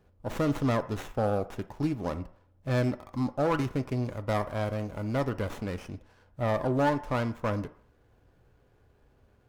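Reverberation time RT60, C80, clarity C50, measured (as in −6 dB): 0.60 s, 19.0 dB, 16.5 dB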